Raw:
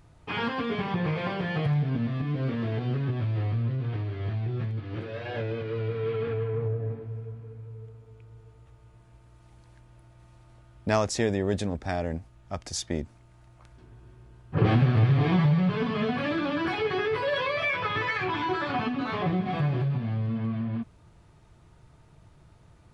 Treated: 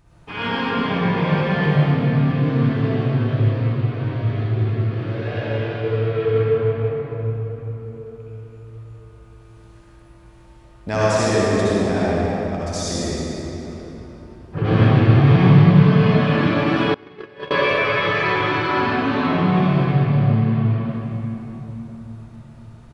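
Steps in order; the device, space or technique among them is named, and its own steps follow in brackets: cave (delay 195 ms -13 dB; reverberation RT60 3.6 s, pre-delay 55 ms, DRR -9.5 dB); 16.94–17.51 s: gate -12 dBFS, range -26 dB; trim -1 dB

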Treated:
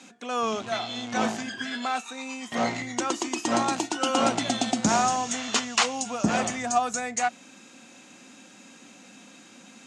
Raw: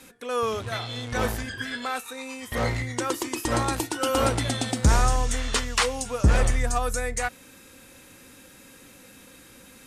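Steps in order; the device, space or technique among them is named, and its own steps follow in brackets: television speaker (cabinet simulation 170–7500 Hz, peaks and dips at 220 Hz +6 dB, 490 Hz -7 dB, 710 Hz +8 dB, 1.8 kHz -3 dB, 2.8 kHz +3 dB, 6.7 kHz +6 dB)

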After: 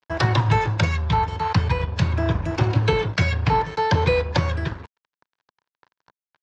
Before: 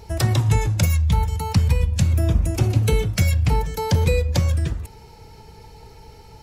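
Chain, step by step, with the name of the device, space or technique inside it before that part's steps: blown loudspeaker (crossover distortion -34.5 dBFS; cabinet simulation 120–4700 Hz, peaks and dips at 220 Hz -9 dB, 990 Hz +9 dB, 1.6 kHz +8 dB); trim +3.5 dB

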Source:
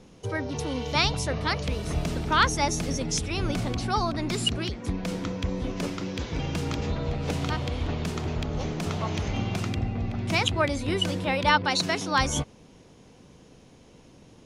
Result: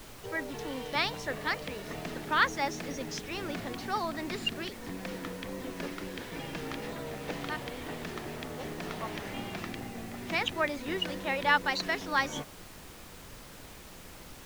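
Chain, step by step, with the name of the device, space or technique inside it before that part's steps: horn gramophone (band-pass 230–4500 Hz; peaking EQ 1.8 kHz +8 dB 0.29 oct; wow and flutter; pink noise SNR 13 dB); trim -5.5 dB

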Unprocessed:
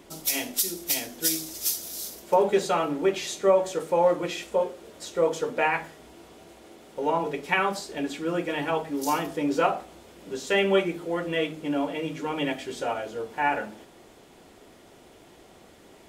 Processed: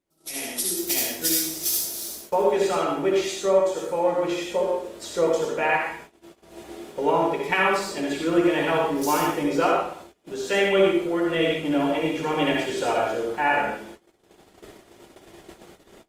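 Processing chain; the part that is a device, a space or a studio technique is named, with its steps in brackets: speakerphone in a meeting room (reverberation RT60 0.55 s, pre-delay 57 ms, DRR -1 dB; level rider gain up to 13 dB; gate -34 dBFS, range -23 dB; trim -7.5 dB; Opus 32 kbps 48 kHz)

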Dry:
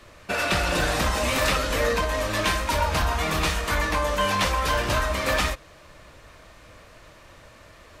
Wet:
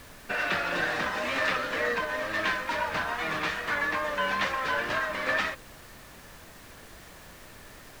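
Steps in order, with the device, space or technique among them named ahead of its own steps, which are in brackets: horn gramophone (band-pass 190–4200 Hz; peaking EQ 1.7 kHz +8 dB 0.6 oct; wow and flutter; pink noise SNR 18 dB); trim -6.5 dB

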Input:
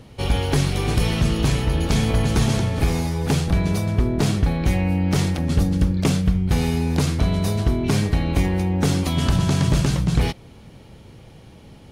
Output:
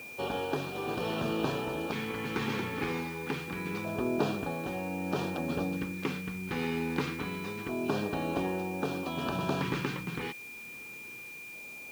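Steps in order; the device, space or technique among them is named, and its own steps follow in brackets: shortwave radio (band-pass 330–2500 Hz; tremolo 0.73 Hz, depth 40%; LFO notch square 0.26 Hz 640–2100 Hz; whistle 2.4 kHz -41 dBFS; white noise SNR 21 dB); trim -2 dB

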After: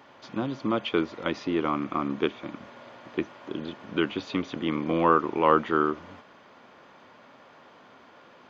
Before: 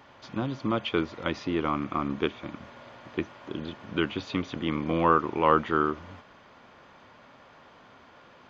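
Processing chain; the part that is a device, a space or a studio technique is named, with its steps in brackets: filter by subtraction (in parallel: low-pass 290 Hz 12 dB/octave + polarity flip)

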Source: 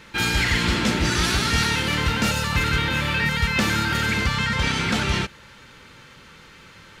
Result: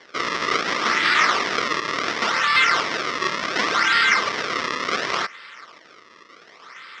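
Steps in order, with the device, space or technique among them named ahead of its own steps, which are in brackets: circuit-bent sampling toy (decimation with a swept rate 33×, swing 160% 0.69 Hz; cabinet simulation 550–5600 Hz, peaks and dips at 580 Hz -4 dB, 820 Hz -8 dB, 1.2 kHz +9 dB, 2 kHz +9 dB, 3.4 kHz +4 dB, 5.4 kHz +9 dB); trim +3 dB

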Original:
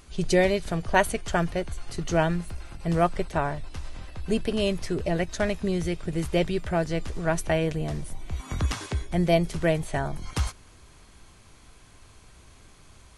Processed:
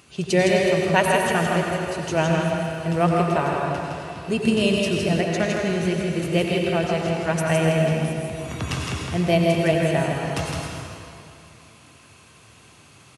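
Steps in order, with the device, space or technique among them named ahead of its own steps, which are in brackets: PA in a hall (high-pass 100 Hz 24 dB/octave; peaking EQ 2.7 kHz +8 dB 0.22 oct; delay 162 ms -4 dB; reverberation RT60 2.5 s, pre-delay 83 ms, DRR 0.5 dB); 4.42–5.21 s: tone controls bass +4 dB, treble +4 dB; trim +1 dB

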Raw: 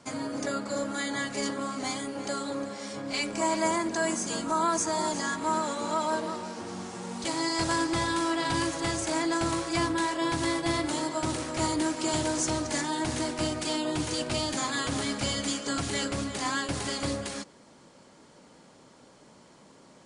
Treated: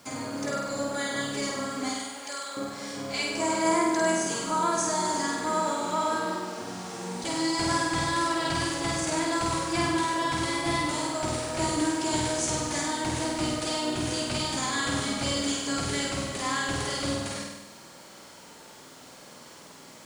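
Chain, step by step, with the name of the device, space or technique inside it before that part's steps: noise-reduction cassette on a plain deck (tape noise reduction on one side only encoder only; wow and flutter 18 cents; white noise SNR 32 dB); 1.89–2.57 s: Bessel high-pass 990 Hz, order 2; flutter echo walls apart 8.5 m, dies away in 1.1 s; trim -1.5 dB

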